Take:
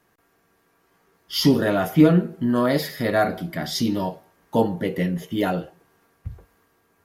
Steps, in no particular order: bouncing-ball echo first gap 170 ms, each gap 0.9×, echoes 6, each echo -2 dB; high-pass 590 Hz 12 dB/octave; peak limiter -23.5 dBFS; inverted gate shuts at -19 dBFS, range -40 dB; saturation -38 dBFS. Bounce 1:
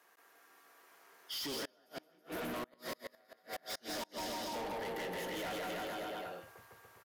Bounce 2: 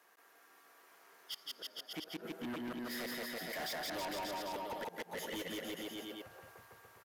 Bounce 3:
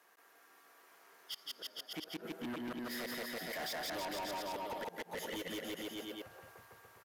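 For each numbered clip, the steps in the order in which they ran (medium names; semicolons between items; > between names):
high-pass > peak limiter > bouncing-ball echo > inverted gate > saturation; high-pass > inverted gate > peak limiter > bouncing-ball echo > saturation; high-pass > inverted gate > bouncing-ball echo > peak limiter > saturation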